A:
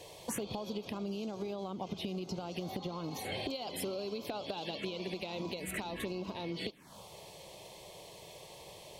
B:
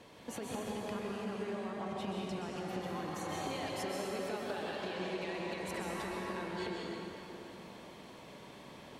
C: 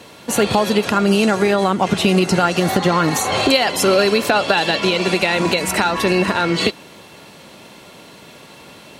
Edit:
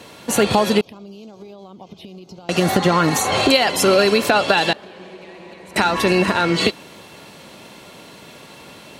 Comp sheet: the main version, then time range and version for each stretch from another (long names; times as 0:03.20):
C
0:00.81–0:02.49: punch in from A
0:04.73–0:05.76: punch in from B